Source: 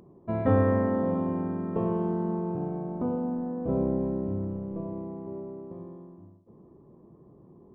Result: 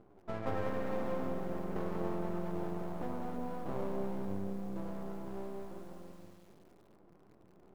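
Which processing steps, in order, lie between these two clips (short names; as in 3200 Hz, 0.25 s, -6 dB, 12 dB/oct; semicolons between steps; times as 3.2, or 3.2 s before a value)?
flange 1.9 Hz, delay 8.7 ms, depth 2.4 ms, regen -12%; compressor 2:1, threshold -34 dBFS, peak gain reduction 8 dB; low shelf 160 Hz -11.5 dB; half-wave rectifier; lo-fi delay 0.189 s, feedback 55%, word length 10-bit, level -7 dB; gain +2.5 dB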